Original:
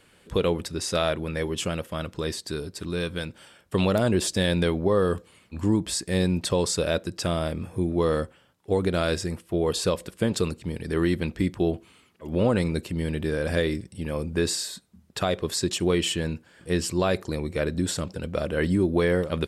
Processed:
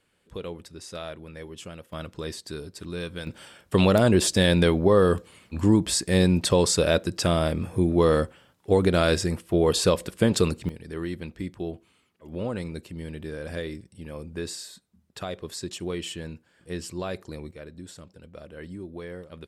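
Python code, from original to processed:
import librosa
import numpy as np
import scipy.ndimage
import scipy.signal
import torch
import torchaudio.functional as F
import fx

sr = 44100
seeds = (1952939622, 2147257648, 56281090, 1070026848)

y = fx.gain(x, sr, db=fx.steps((0.0, -12.0), (1.93, -4.5), (3.27, 3.5), (10.69, -8.5), (17.51, -16.0)))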